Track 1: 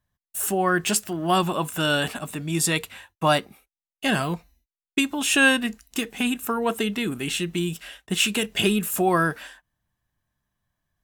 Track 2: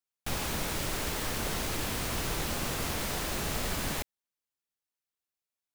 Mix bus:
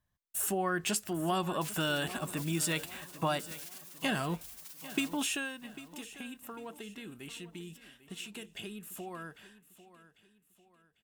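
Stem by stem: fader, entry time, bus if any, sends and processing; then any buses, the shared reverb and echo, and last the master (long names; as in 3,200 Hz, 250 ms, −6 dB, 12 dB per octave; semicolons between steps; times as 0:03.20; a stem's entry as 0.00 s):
0:05.22 −4 dB → 0:05.58 −16 dB, 0.00 s, no send, echo send −16 dB, downward compressor 3 to 1, threshold −26 dBFS, peak gain reduction 10.5 dB
−2.5 dB, 1.35 s, no send, echo send −16.5 dB, gate on every frequency bin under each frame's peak −25 dB weak; shaped tremolo saw down 0.98 Hz, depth 85%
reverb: not used
echo: repeating echo 797 ms, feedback 40%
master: no processing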